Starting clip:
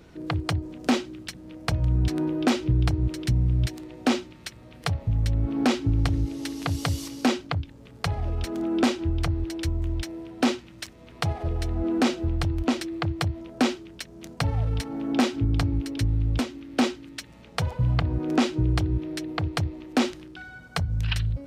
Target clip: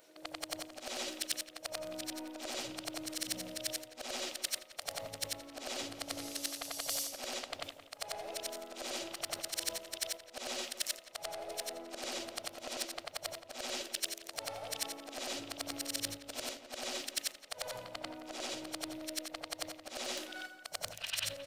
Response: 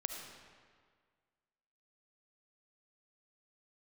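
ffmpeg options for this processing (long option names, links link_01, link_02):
-filter_complex "[0:a]afftfilt=real='re':imag='-im':win_size=8192:overlap=0.75,highpass=460,agate=range=-7dB:threshold=-48dB:ratio=16:detection=peak,equalizer=frequency=600:width_type=o:width=0.46:gain=12.5,areverse,acompressor=threshold=-46dB:ratio=10,areverse,aeval=exprs='(tanh(70.8*val(0)+0.3)-tanh(0.3))/70.8':channel_layout=same,crystalizer=i=5.5:c=0,asplit=2[link_01][link_02];[link_02]adelay=173,lowpass=frequency=1900:poles=1,volume=-10.5dB,asplit=2[link_03][link_04];[link_04]adelay=173,lowpass=frequency=1900:poles=1,volume=0.36,asplit=2[link_05][link_06];[link_06]adelay=173,lowpass=frequency=1900:poles=1,volume=0.36,asplit=2[link_07][link_08];[link_08]adelay=173,lowpass=frequency=1900:poles=1,volume=0.36[link_09];[link_03][link_05][link_07][link_09]amix=inputs=4:normalize=0[link_10];[link_01][link_10]amix=inputs=2:normalize=0,volume=4.5dB"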